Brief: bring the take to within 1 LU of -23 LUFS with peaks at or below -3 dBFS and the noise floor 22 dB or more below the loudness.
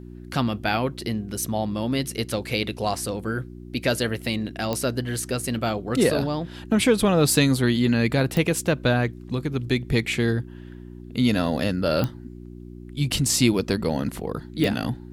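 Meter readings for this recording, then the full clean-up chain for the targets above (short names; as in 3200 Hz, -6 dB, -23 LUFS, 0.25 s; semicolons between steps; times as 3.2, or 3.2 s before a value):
clicks 4; hum 60 Hz; harmonics up to 360 Hz; hum level -38 dBFS; loudness -24.0 LUFS; peak -4.5 dBFS; loudness target -23.0 LUFS
-> de-click; de-hum 60 Hz, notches 6; gain +1 dB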